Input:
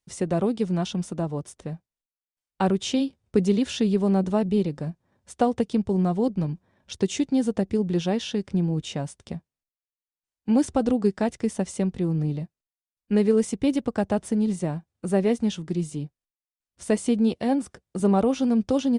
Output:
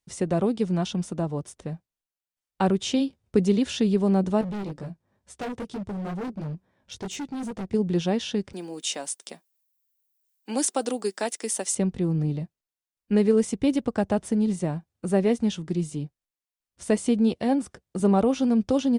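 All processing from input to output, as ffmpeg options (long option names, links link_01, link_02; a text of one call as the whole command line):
ffmpeg -i in.wav -filter_complex "[0:a]asettb=1/sr,asplit=3[link_01][link_02][link_03];[link_01]atrim=end=4.414[link_04];[link_02]atrim=start=4.41:end=7.74,asetpts=PTS-STARTPTS,afade=type=in:duration=0.004:curve=qsin,afade=type=out:start_time=3.326:duration=0.004:curve=qsin,flanger=delay=15.5:depth=4.8:speed=2.2,asoftclip=type=hard:threshold=-29.5dB[link_05];[link_03]atrim=start=7.736[link_06];[link_04][link_05]acrossfade=duration=0.004:curve1=hsin:curve2=qsin[link_07];[link_07][link_06]acrossfade=duration=0.004:curve1=qsin:curve2=hsin,asettb=1/sr,asplit=3[link_08][link_09][link_10];[link_08]atrim=end=8.534[link_11];[link_09]atrim=start=8.53:end=11.75,asetpts=PTS-STARTPTS,afade=type=in:duration=0.004:curve=qsin,afade=type=out:start_time=3.216:duration=0.004:curve=qsin,highpass=frequency=240:width=0.5412,highpass=frequency=240:width=1.3066,aemphasis=mode=production:type=riaa[link_12];[link_10]atrim=start=11.746[link_13];[link_11][link_12]acrossfade=duration=0.004:curve1=hsin:curve2=qsin[link_14];[link_14][link_13]acrossfade=duration=0.004:curve1=qsin:curve2=hsin" out.wav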